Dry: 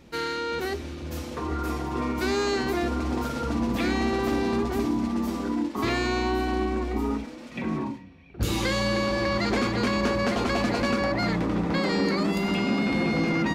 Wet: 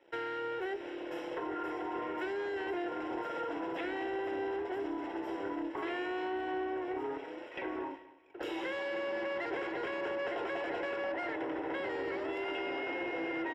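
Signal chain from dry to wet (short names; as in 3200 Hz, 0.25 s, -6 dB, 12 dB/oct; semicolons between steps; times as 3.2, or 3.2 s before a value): steep high-pass 310 Hz 72 dB/oct; sample leveller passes 2; compressor, threshold -27 dBFS, peak gain reduction 7.5 dB; added harmonics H 2 -9 dB, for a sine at -18.5 dBFS; polynomial smoothing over 25 samples; notch comb 1200 Hz; feedback echo 0.23 s, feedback 33%, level -18.5 dB; gain -7 dB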